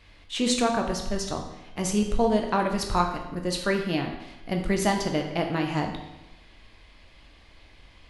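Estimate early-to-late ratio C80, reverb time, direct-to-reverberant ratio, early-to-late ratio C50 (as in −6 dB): 8.0 dB, 1.0 s, 2.0 dB, 6.0 dB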